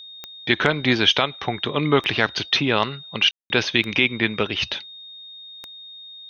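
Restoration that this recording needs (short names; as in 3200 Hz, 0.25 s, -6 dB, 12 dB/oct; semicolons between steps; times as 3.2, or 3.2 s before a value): de-click; notch 3700 Hz, Q 30; room tone fill 3.31–3.5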